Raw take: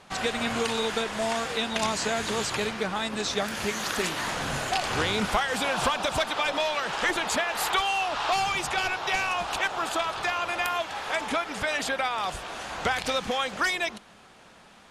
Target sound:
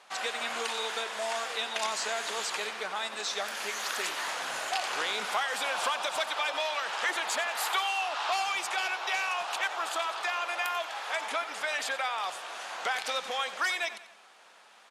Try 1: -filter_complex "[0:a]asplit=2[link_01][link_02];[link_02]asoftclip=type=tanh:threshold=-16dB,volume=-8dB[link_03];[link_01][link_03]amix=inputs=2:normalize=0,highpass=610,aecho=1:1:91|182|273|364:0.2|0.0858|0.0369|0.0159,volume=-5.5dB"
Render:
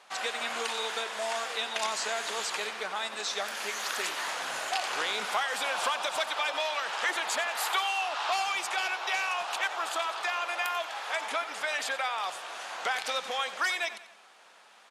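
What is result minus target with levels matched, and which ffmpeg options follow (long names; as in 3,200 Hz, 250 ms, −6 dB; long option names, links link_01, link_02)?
soft clipping: distortion −8 dB
-filter_complex "[0:a]asplit=2[link_01][link_02];[link_02]asoftclip=type=tanh:threshold=-22dB,volume=-8dB[link_03];[link_01][link_03]amix=inputs=2:normalize=0,highpass=610,aecho=1:1:91|182|273|364:0.2|0.0858|0.0369|0.0159,volume=-5.5dB"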